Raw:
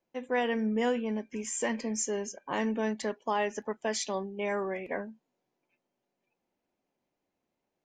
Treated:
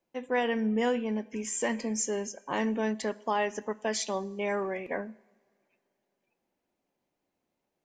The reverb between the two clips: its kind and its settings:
coupled-rooms reverb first 0.86 s, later 3.3 s, from −20 dB, DRR 19 dB
level +1 dB

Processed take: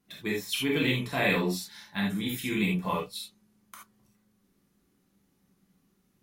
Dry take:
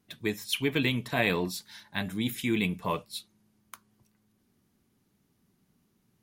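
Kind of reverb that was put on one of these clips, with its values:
reverb whose tail is shaped and stops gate 100 ms flat, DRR −4 dB
level −4 dB

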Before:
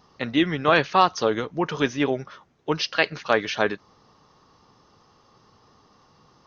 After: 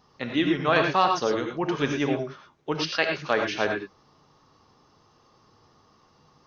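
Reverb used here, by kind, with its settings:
reverb whose tail is shaped and stops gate 130 ms rising, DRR 3 dB
level −4 dB

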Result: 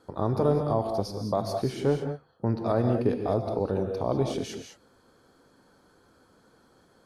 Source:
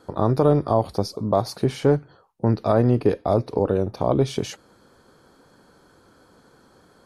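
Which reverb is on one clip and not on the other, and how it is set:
reverb whose tail is shaped and stops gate 230 ms rising, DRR 5 dB
level −7 dB

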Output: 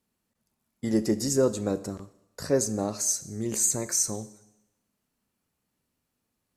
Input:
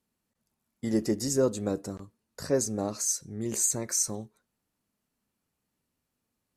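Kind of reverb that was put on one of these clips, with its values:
four-comb reverb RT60 0.88 s, combs from 29 ms, DRR 15 dB
level +2 dB

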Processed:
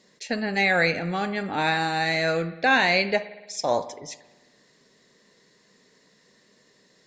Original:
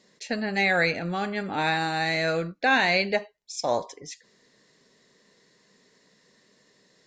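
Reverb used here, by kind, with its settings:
spring reverb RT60 1.2 s, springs 54 ms, chirp 60 ms, DRR 14.5 dB
level +1.5 dB

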